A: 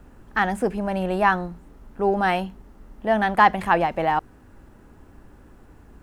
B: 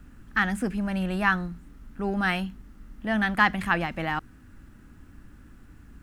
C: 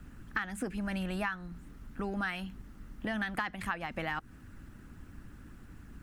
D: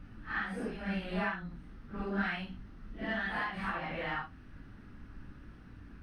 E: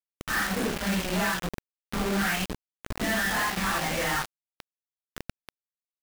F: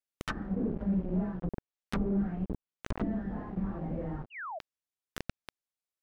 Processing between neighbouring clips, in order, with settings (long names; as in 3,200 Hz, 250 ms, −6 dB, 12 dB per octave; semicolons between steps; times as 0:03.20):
flat-topped bell 610 Hz −11 dB
harmonic and percussive parts rebalanced percussive +7 dB; downward compressor 10 to 1, threshold −27 dBFS, peak gain reduction 16.5 dB; level −4 dB
random phases in long frames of 200 ms; Savitzky-Golay smoothing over 15 samples
log-companded quantiser 2 bits; level +1 dB
sound drawn into the spectrogram fall, 0:04.30–0:04.59, 590–3,000 Hz −39 dBFS; treble cut that deepens with the level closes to 340 Hz, closed at −26 dBFS